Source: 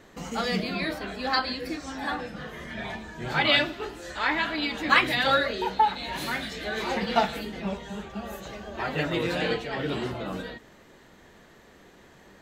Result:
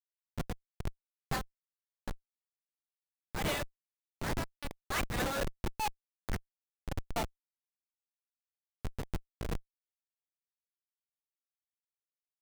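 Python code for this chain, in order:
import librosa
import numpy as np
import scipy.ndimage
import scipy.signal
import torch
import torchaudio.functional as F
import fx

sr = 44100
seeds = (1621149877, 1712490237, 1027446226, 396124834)

y = scipy.signal.sosfilt(scipy.signal.butter(2, 570.0, 'highpass', fs=sr, output='sos'), x)
y = fx.schmitt(y, sr, flips_db=-22.0)
y = y * (1.0 - 0.44 / 2.0 + 0.44 / 2.0 * np.cos(2.0 * np.pi * 4.6 * (np.arange(len(y)) / sr)))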